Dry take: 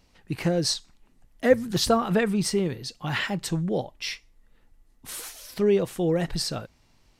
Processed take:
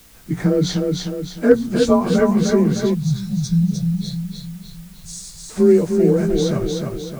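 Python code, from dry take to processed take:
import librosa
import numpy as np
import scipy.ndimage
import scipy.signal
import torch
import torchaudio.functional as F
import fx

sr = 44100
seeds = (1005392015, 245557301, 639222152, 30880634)

p1 = fx.partial_stretch(x, sr, pct=91)
p2 = fx.low_shelf(p1, sr, hz=410.0, db=8.0)
p3 = fx.echo_feedback(p2, sr, ms=305, feedback_pct=47, wet_db=-4.5)
p4 = fx.spec_box(p3, sr, start_s=2.94, length_s=2.56, low_hz=210.0, high_hz=3300.0, gain_db=-27)
p5 = fx.rider(p4, sr, range_db=4, speed_s=0.5)
p6 = p4 + (p5 * 10.0 ** (0.0 / 20.0))
p7 = fx.peak_eq(p6, sr, hz=3100.0, db=-11.5, octaves=0.52)
p8 = fx.quant_dither(p7, sr, seeds[0], bits=8, dither='triangular')
p9 = fx.hum_notches(p8, sr, base_hz=60, count=3)
y = p9 * 10.0 ** (-1.5 / 20.0)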